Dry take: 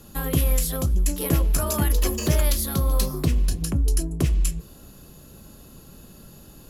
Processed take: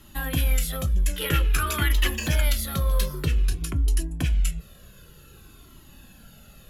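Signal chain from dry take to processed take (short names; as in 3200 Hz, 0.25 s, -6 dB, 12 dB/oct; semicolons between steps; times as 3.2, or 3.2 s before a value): band shelf 2200 Hz +8 dB, from 1.13 s +14.5 dB, from 2.18 s +8 dB; cascading flanger falling 0.52 Hz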